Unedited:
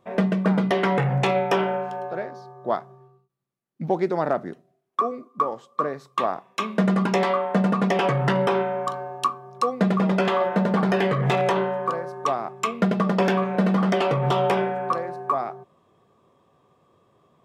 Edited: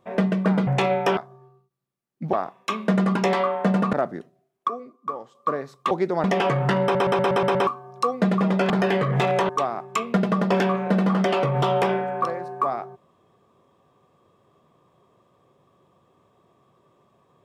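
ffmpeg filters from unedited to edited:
-filter_complex "[0:a]asplit=18[a][b][c][d][e][f][g][h][i][j][k][l][m][n][o][p][q][r];[a]atrim=end=0.672[s];[b]atrim=start=1.118:end=1.622[t];[c]atrim=start=2.758:end=3.922[u];[d]atrim=start=6.228:end=7.832[v];[e]atrim=start=4.248:end=5.002[w];[f]atrim=start=4.998:end=5.672,asetpts=PTS-STARTPTS,volume=-6.5dB[x];[g]atrim=start=5.668:end=6.232[y];[h]atrim=start=3.918:end=4.252[z];[i]atrim=start=7.828:end=8.542[aa];[j]atrim=start=8.418:end=8.542[ab];[k]atrim=start=8.418:end=8.542[ac];[l]atrim=start=8.418:end=8.542[ad];[m]atrim=start=8.418:end=8.542[ae];[n]atrim=start=8.418:end=8.542[af];[o]atrim=start=8.418:end=8.542[ag];[p]atrim=start=9.258:end=10.292[ah];[q]atrim=start=10.798:end=11.592[ai];[r]atrim=start=12.168[aj];[s][t]acrossfade=d=0.004:c1=hsin:c2=hsin[ak];[ak][u]acrossfade=d=0.004:c1=hsin:c2=hsin[al];[al][v]acrossfade=d=0.004:c1=hsin:c2=hsin[am];[am][w]acrossfade=d=0.004:c1=hsin:c2=hsin[an];[an][x]acrossfade=d=0.004:c1=hsin:c2=hsin[ao];[ao][y]acrossfade=d=0.004:c1=hsin:c2=hsin[ap];[ap][z]acrossfade=d=0.004:c1=hsin:c2=hsin[aq];[aq][aa]acrossfade=d=0.004:c1=hsin:c2=hsin[ar];[ar][ab]acrossfade=d=0.004:c1=hsin:c2=hsin[as];[as][ac]acrossfade=d=0.004:c1=hsin:c2=hsin[at];[at][ad]acrossfade=d=0.004:c1=hsin:c2=hsin[au];[au][ae]acrossfade=d=0.004:c1=hsin:c2=hsin[av];[av][af]acrossfade=d=0.004:c1=hsin:c2=hsin[aw];[aw][ag]acrossfade=d=0.004:c1=hsin:c2=hsin[ax];[ax][ah]acrossfade=d=0.004:c1=hsin:c2=hsin[ay];[ay][ai]acrossfade=d=0.004:c1=hsin:c2=hsin[az];[az][aj]acrossfade=d=0.004:c1=hsin:c2=hsin"

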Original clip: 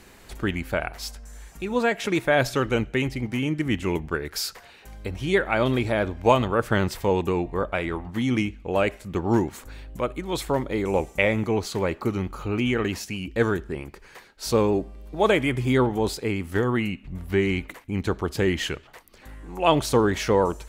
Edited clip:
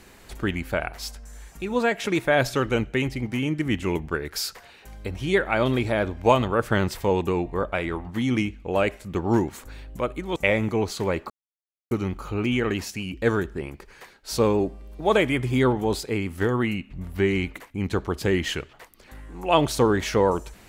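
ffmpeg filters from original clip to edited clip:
-filter_complex "[0:a]asplit=3[a][b][c];[a]atrim=end=10.362[d];[b]atrim=start=11.108:end=12.05,asetpts=PTS-STARTPTS,afade=t=out:st=0.938:d=0.004:c=hsin,apad=pad_dur=0.61[e];[c]atrim=start=12.05,asetpts=PTS-STARTPTS,afade=t=in:d=0.004:c=hsin[f];[e][f]concat=n=2:v=0:a=1[g];[d][g]acrossfade=d=0.004:c1=hsin:c2=hsin"

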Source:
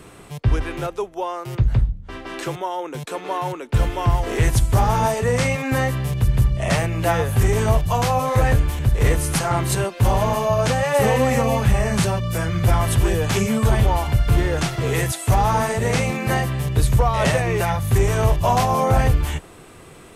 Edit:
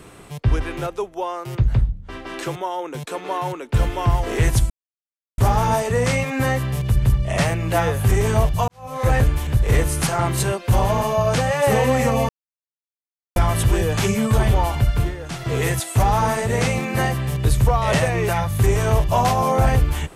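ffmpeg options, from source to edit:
-filter_complex "[0:a]asplit=7[a][b][c][d][e][f][g];[a]atrim=end=4.7,asetpts=PTS-STARTPTS,afade=t=out:st=4.696:d=0.004:c=hsin,apad=pad_dur=0.68[h];[b]atrim=start=4.7:end=8,asetpts=PTS-STARTPTS,afade=t=in:d=0.004:c=hsin,afade=t=out:st=3.296:d=0.004:c=hsin[i];[c]atrim=start=8:end=11.61,asetpts=PTS-STARTPTS,afade=t=in:d=0.41:c=qua,afade=t=out:st=3.606:d=0.004:c=hsin[j];[d]atrim=start=11.61:end=12.68,asetpts=PTS-STARTPTS,volume=0[k];[e]atrim=start=12.68:end=14.47,asetpts=PTS-STARTPTS,afade=t=in:d=0.004:c=hsin,afade=t=out:st=1.54:d=0.25:silence=0.281838[l];[f]atrim=start=14.47:end=14.6,asetpts=PTS-STARTPTS,volume=-11dB[m];[g]atrim=start=14.6,asetpts=PTS-STARTPTS,afade=t=in:d=0.25:silence=0.281838[n];[h][i][j][k][l][m][n]concat=n=7:v=0:a=1"

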